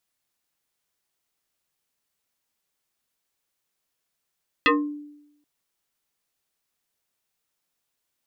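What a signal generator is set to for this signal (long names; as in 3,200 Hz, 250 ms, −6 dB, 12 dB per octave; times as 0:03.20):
two-operator FM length 0.78 s, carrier 294 Hz, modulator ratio 2.6, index 4.5, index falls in 0.32 s exponential, decay 0.87 s, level −13 dB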